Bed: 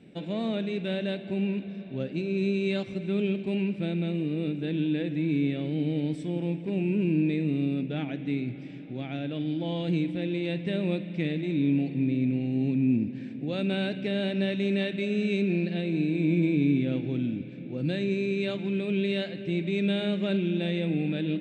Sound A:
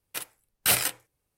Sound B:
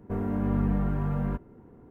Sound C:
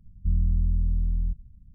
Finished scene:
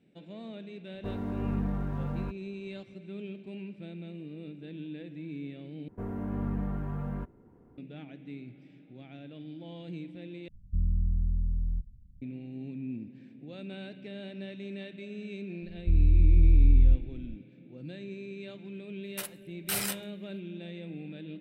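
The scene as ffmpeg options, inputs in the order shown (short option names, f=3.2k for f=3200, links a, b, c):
-filter_complex "[2:a]asplit=2[a][b];[3:a]asplit=2[c][d];[0:a]volume=-13.5dB[e];[a]aeval=exprs='sgn(val(0))*max(abs(val(0))-0.00188,0)':c=same[f];[d]asubboost=boost=8:cutoff=140[g];[1:a]alimiter=limit=-19.5dB:level=0:latency=1:release=13[h];[e]asplit=3[i][j][k];[i]atrim=end=5.884[l];[b]atrim=end=1.9,asetpts=PTS-STARTPTS,volume=-6.5dB[m];[j]atrim=start=7.776:end=10.484[n];[c]atrim=end=1.74,asetpts=PTS-STARTPTS,volume=-4.5dB[o];[k]atrim=start=12.216[p];[f]atrim=end=1.9,asetpts=PTS-STARTPTS,volume=-5dB,afade=t=in:d=0.004:c=hsin,afade=t=out:st=1.896:d=0.004:c=hsin,adelay=940[q];[g]atrim=end=1.74,asetpts=PTS-STARTPTS,volume=-4dB,afade=t=in:d=0.004:c=hsin,afade=t=out:st=1.736:d=0.004:c=hsin,adelay=15620[r];[h]atrim=end=1.37,asetpts=PTS-STARTPTS,volume=-1.5dB,afade=t=in:d=0.004:c=hsin,afade=t=out:st=1.366:d=0.004:c=hsin,adelay=19030[s];[l][m]acrossfade=d=0.004:c1=hsin:c2=hsin[t];[t][n]acrossfade=d=0.004:c1=hsin:c2=hsin[u];[u][o]acrossfade=d=0.004:c1=hsin:c2=hsin[v];[v][p]acrossfade=d=0.004:c1=hsin:c2=hsin[w];[w][q][r][s]amix=inputs=4:normalize=0"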